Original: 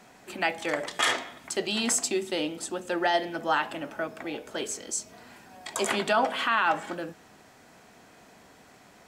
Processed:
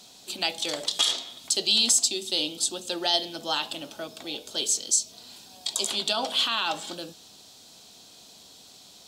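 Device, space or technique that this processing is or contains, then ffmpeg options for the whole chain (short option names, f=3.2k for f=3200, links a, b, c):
over-bright horn tweeter: -af "highshelf=f=2.7k:t=q:w=3:g=12,alimiter=limit=-6.5dB:level=0:latency=1:release=440,volume=-3.5dB"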